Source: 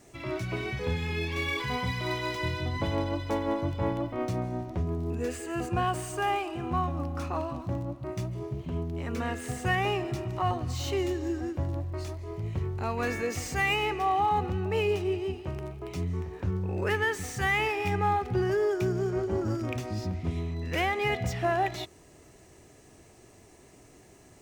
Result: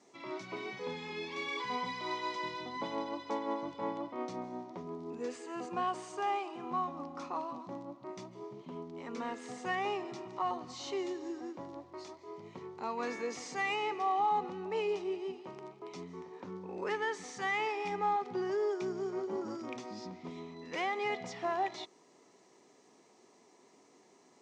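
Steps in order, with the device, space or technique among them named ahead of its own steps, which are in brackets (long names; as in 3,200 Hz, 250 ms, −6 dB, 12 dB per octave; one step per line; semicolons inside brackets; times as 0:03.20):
television speaker (loudspeaker in its box 220–6,600 Hz, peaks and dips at 320 Hz −5 dB, 630 Hz −5 dB, 980 Hz +5 dB, 1,600 Hz −7 dB, 2,700 Hz −6 dB)
level −4.5 dB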